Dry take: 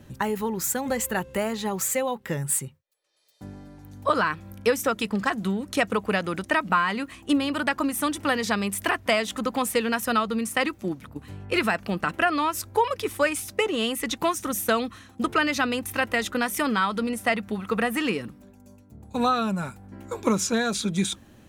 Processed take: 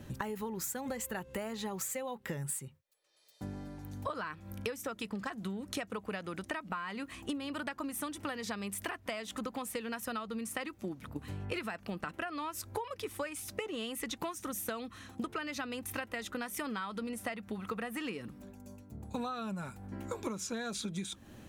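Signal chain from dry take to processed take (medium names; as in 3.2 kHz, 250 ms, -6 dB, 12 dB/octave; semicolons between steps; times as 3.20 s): compression 12:1, threshold -35 dBFS, peak gain reduction 19 dB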